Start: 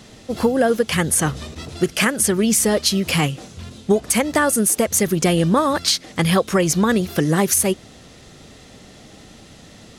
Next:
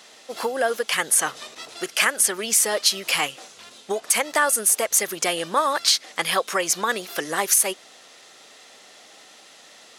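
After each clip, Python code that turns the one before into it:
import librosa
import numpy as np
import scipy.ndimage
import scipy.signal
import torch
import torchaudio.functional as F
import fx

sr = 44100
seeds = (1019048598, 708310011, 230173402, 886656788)

y = scipy.signal.sosfilt(scipy.signal.butter(2, 690.0, 'highpass', fs=sr, output='sos'), x)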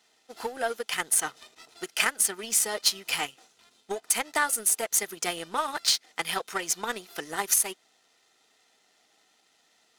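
y = fx.notch_comb(x, sr, f0_hz=560.0)
y = fx.power_curve(y, sr, exponent=1.4)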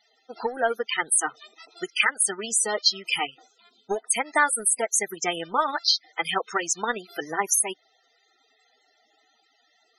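y = fx.spec_topn(x, sr, count=32)
y = y * 10.0 ** (5.5 / 20.0)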